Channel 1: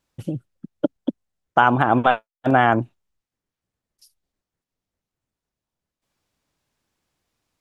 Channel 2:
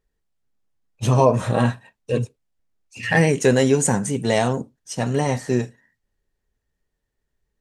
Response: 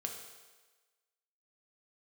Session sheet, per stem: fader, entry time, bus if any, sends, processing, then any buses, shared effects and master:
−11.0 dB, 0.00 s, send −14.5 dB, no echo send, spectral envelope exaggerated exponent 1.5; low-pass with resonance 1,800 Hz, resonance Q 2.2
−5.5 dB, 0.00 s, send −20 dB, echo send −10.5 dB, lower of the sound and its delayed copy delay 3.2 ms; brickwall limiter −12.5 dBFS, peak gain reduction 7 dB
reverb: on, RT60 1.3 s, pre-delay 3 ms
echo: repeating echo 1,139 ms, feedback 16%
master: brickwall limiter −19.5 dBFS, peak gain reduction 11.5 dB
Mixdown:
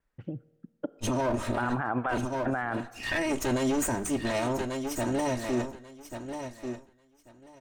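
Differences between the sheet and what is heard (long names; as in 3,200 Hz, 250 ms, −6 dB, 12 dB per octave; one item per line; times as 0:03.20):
stem 1: missing spectral envelope exaggerated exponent 1.5
stem 2: missing brickwall limiter −12.5 dBFS, peak gain reduction 7 dB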